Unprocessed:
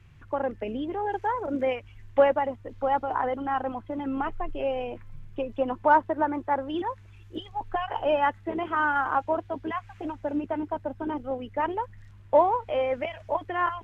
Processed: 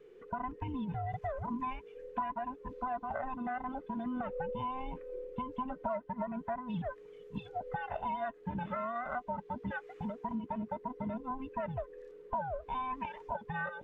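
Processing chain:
frequency inversion band by band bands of 500 Hz
tilt shelving filter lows +3.5 dB, about 1,400 Hz
downward compressor 5 to 1, threshold −28 dBFS, peak gain reduction 14 dB
level −6 dB

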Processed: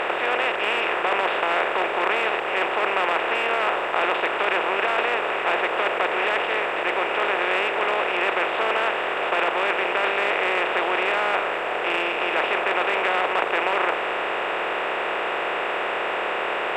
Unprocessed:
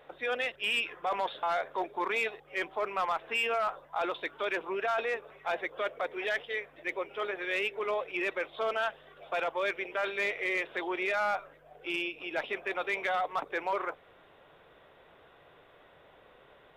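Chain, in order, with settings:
compressor on every frequency bin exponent 0.2
high-shelf EQ 5,500 Hz −11.5 dB

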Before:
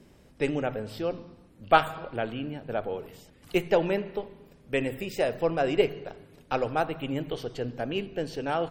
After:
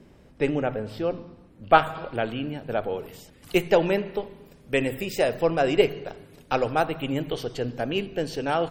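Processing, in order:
high-shelf EQ 4,000 Hz −8.5 dB, from 0:01.95 +4 dB
level +3.5 dB

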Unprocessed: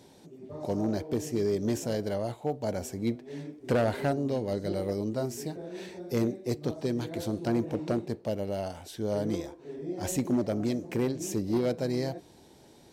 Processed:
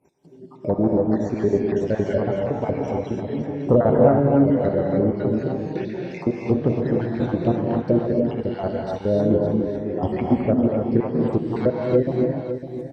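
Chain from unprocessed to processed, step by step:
time-frequency cells dropped at random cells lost 59%
treble cut that deepens with the level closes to 1,100 Hz, closed at −27.5 dBFS
noise gate −55 dBFS, range −15 dB
treble cut that deepens with the level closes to 2,400 Hz, closed at −42.5 dBFS
automatic gain control gain up to 12 dB
on a send: single-tap delay 555 ms −10 dB
on the sum: reverb whose tail is shaped and stops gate 320 ms rising, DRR −0.5 dB
level −1.5 dB

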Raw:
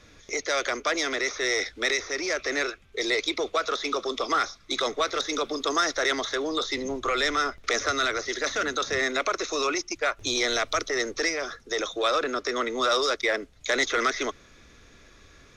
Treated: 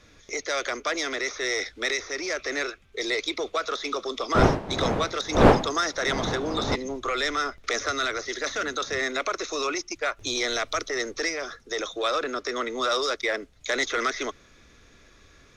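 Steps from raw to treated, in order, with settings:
0:04.34–0:06.74: wind on the microphone 630 Hz −23 dBFS
level −1.5 dB

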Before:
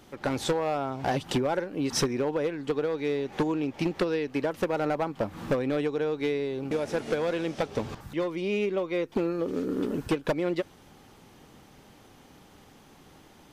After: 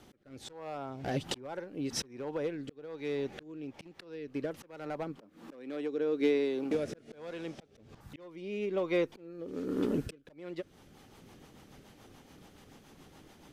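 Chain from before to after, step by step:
rotating-speaker cabinet horn 1.2 Hz, later 7 Hz, at 0:10.27
volume swells 758 ms
0:05.17–0:06.75: low shelf with overshoot 170 Hz −12.5 dB, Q 1.5

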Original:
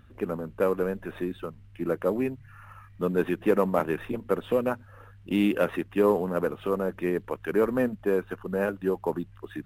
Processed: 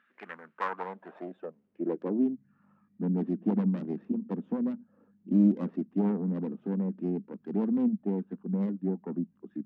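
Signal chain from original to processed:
phase distortion by the signal itself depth 0.81 ms
low shelf with overshoot 130 Hz −13 dB, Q 3
band-pass filter sweep 1,800 Hz → 230 Hz, 0:00.29–0:02.38

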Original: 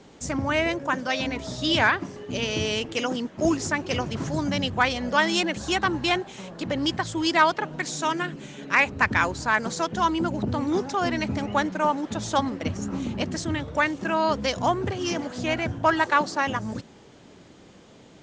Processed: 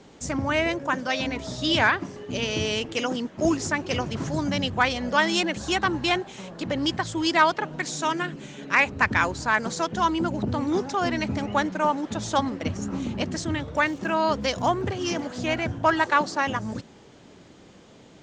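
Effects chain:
0:13.74–0:15.55: surface crackle 78 per second → 23 per second −43 dBFS

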